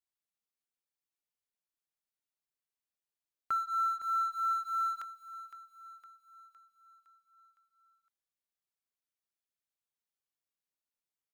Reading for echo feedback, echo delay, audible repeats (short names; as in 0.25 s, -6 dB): 54%, 0.511 s, 5